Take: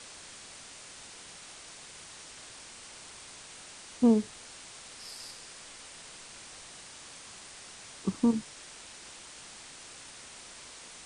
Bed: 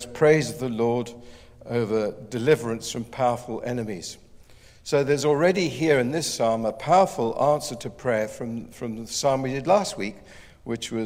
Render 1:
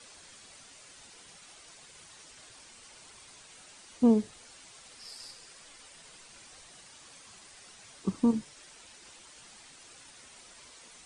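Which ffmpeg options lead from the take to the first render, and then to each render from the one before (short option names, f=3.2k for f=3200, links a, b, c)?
-af "afftdn=nr=8:nf=-49"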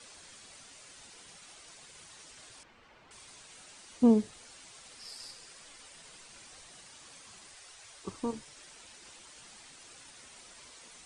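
-filter_complex "[0:a]asettb=1/sr,asplit=3[a][b][c];[a]atrim=end=2.634[d];[b]atrim=start=2.63:end=3.11,asetpts=PTS-STARTPTS,afade=t=in:d=0.004:c=qsin,afade=t=out:st=0.476:d=0.004:c=qsin,lowpass=2.1k[e];[c]atrim=start=3.106[f];[d][e]acrossfade=d=0.004:c1=hsin:c2=qsin[g];[g][f]acrossfade=d=0.004:c1=qsin:c2=hsin,asettb=1/sr,asplit=3[h][i][j];[h]atrim=end=7.544[k];[i]atrim=start=7.54:end=8.48,asetpts=PTS-STARTPTS,afade=t=in:d=0.004:c=qsin,afade=t=out:st=0.936:d=0.004:c=qsin,equalizer=f=200:w=1.3:g=-15[l];[j]atrim=start=8.476[m];[k][l]acrossfade=d=0.004:c1=hsin:c2=qsin[n];[n][m]acrossfade=d=0.004:c1=qsin:c2=hsin"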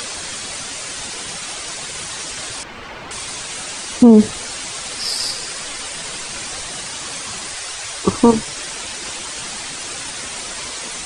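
-af "acompressor=mode=upward:threshold=-53dB:ratio=2.5,alimiter=level_in=24.5dB:limit=-1dB:release=50:level=0:latency=1"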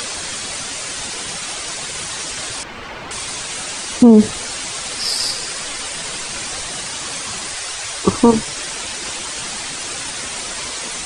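-af "volume=2dB,alimiter=limit=-1dB:level=0:latency=1"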